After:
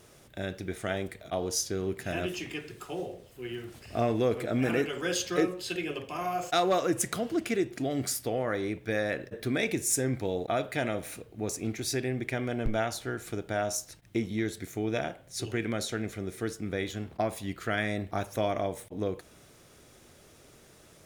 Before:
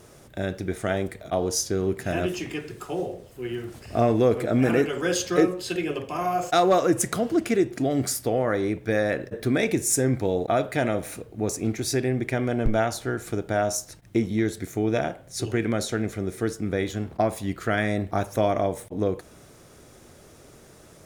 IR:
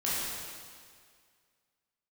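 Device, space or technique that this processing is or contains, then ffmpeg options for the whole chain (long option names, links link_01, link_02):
presence and air boost: -af "equalizer=frequency=3000:width_type=o:width=1.6:gain=5.5,highshelf=frequency=11000:gain=5.5,volume=-7dB"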